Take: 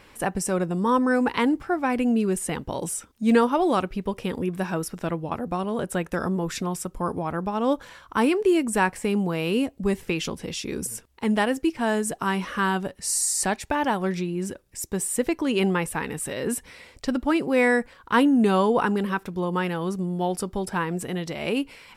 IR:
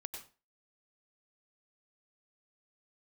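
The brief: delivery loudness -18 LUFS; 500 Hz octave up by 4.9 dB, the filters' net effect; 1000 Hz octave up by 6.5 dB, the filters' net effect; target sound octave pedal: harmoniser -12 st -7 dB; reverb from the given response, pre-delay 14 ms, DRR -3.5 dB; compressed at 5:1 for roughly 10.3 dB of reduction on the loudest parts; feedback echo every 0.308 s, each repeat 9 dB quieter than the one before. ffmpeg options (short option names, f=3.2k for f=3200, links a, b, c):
-filter_complex "[0:a]equalizer=f=500:t=o:g=4.5,equalizer=f=1k:t=o:g=6.5,acompressor=threshold=-22dB:ratio=5,aecho=1:1:308|616|924|1232:0.355|0.124|0.0435|0.0152,asplit=2[a][b];[1:a]atrim=start_sample=2205,adelay=14[c];[b][c]afir=irnorm=-1:irlink=0,volume=6dB[d];[a][d]amix=inputs=2:normalize=0,asplit=2[e][f];[f]asetrate=22050,aresample=44100,atempo=2,volume=-7dB[g];[e][g]amix=inputs=2:normalize=0,volume=3dB"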